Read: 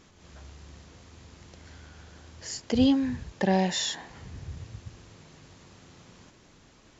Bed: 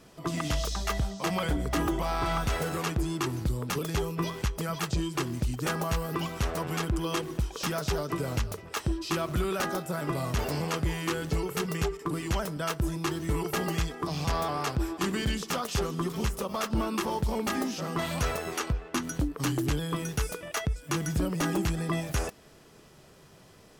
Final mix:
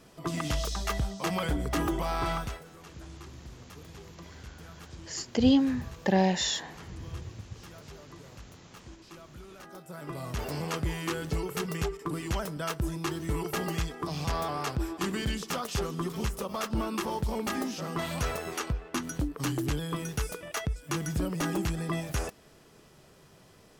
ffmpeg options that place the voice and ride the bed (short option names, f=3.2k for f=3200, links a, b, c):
-filter_complex "[0:a]adelay=2650,volume=0dB[a];[1:a]volume=16.5dB,afade=t=out:st=2.28:d=0.34:silence=0.11885,afade=t=in:st=9.63:d=1.12:silence=0.133352[b];[a][b]amix=inputs=2:normalize=0"